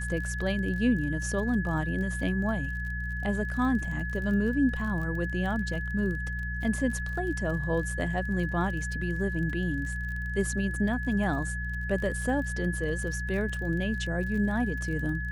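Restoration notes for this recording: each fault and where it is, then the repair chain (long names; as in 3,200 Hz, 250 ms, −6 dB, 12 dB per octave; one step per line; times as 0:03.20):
surface crackle 29 per second −36 dBFS
mains hum 60 Hz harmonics 3 −34 dBFS
whistle 1,700 Hz −35 dBFS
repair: click removal
notch filter 1,700 Hz, Q 30
hum removal 60 Hz, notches 3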